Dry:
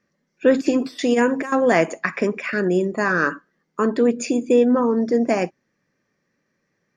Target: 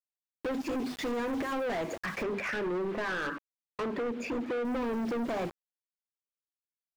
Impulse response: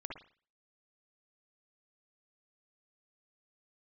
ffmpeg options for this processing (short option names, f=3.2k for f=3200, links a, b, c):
-filter_complex "[0:a]dynaudnorm=f=320:g=9:m=10.5dB,agate=range=-10dB:threshold=-36dB:ratio=16:detection=peak,bandreject=f=50:t=h:w=6,bandreject=f=100:t=h:w=6,bandreject=f=150:t=h:w=6,bandreject=f=200:t=h:w=6,bandreject=f=250:t=h:w=6,bandreject=f=300:t=h:w=6,bandreject=f=350:t=h:w=6,bandreject=f=400:t=h:w=6,acrusher=bits=5:mix=0:aa=0.000001,acompressor=threshold=-19dB:ratio=6,asettb=1/sr,asplit=3[a][b][c];[a]atrim=end=2.234[d];[b]atrim=start=2.23:end=4.65,asetpts=PTS-STARTPTS,afade=t=in:d=0.004:c=qsin,afade=t=out:st=2.416:d=0.004:c=qsin,bass=f=250:g=-6,treble=f=4k:g=-14[e];[c]atrim=start=4.646[f];[d][e]acrossfade=d=0.004:c1=hsin:c2=qsin[g];[g][f]acrossfade=d=0.004:c1=qsin:c2=hsin,asoftclip=type=hard:threshold=-28dB,highshelf=f=4.7k:g=-11.5,volume=-2dB"